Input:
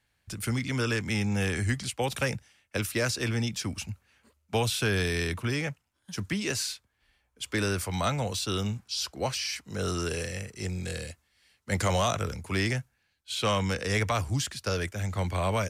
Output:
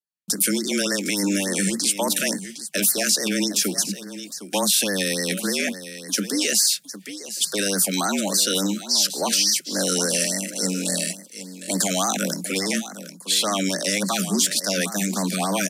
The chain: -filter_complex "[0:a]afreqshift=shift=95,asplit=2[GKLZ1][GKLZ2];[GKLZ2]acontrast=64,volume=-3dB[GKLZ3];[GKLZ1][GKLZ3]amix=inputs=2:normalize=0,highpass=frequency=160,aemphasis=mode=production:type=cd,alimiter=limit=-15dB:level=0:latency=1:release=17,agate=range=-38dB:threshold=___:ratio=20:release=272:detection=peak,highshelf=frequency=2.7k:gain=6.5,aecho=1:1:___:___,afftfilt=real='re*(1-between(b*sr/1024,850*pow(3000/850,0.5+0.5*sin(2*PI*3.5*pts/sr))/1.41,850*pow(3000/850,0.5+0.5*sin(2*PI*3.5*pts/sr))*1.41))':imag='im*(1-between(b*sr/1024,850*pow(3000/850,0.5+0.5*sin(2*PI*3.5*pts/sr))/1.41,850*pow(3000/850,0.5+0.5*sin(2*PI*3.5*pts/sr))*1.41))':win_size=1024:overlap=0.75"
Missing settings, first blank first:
-59dB, 759, 0.237